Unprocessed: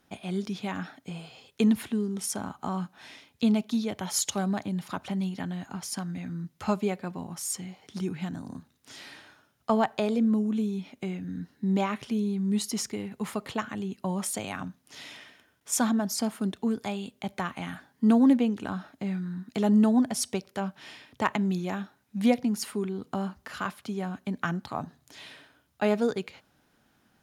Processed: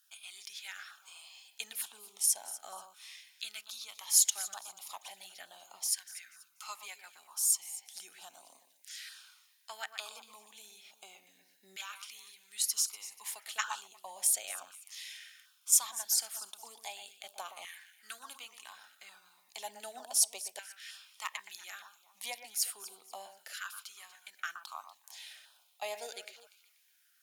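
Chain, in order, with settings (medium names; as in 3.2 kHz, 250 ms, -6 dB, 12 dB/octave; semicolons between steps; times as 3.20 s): pre-emphasis filter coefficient 0.97; on a send: echo whose repeats swap between lows and highs 121 ms, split 2.5 kHz, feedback 55%, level -10 dB; on the sum: LFO notch saw down 1.1 Hz 920–2200 Hz; time-frequency box 13.59–13.81 s, 830–8300 Hz +11 dB; LFO high-pass saw down 0.34 Hz 570–1700 Hz; trim +4 dB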